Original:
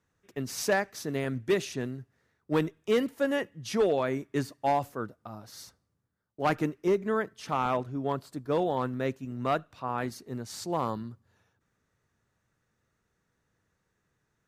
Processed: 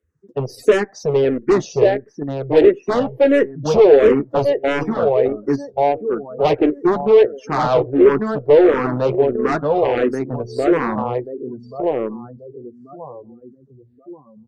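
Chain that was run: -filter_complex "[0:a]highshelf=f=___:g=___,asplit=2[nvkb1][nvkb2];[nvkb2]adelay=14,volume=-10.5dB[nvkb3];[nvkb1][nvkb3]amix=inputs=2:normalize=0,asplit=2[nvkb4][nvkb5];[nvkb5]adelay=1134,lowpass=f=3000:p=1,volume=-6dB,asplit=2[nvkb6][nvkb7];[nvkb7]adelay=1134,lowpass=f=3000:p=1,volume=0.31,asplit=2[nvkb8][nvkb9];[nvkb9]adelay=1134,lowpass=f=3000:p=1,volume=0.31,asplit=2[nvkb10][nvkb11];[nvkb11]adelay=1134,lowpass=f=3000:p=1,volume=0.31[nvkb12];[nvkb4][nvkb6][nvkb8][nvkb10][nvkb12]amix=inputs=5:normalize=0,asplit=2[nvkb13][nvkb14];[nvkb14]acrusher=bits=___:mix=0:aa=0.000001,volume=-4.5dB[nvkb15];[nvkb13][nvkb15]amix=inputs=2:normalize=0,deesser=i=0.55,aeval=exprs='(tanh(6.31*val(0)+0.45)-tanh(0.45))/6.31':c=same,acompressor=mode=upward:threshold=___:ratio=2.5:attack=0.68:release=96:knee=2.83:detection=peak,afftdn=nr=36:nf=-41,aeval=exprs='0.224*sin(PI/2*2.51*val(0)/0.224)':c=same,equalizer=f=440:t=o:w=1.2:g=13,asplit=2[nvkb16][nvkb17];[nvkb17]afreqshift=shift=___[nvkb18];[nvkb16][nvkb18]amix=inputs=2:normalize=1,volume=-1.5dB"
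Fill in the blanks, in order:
10000, 3, 4, -38dB, -1.5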